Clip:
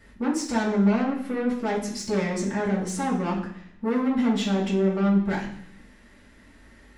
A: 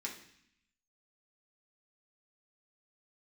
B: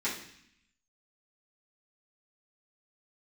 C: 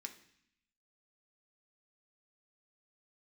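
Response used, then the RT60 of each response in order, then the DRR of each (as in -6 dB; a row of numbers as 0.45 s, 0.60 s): B; 0.65 s, 0.65 s, 0.65 s; -2.5 dB, -10.5 dB, 4.0 dB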